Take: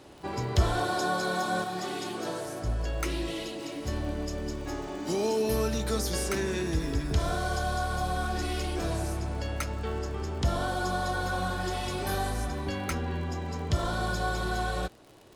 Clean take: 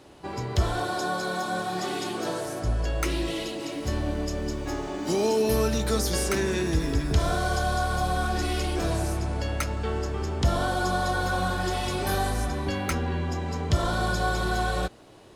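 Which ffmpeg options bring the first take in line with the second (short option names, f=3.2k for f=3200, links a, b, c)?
-af "adeclick=t=4,asetnsamples=n=441:p=0,asendcmd='1.64 volume volume 4dB',volume=0dB"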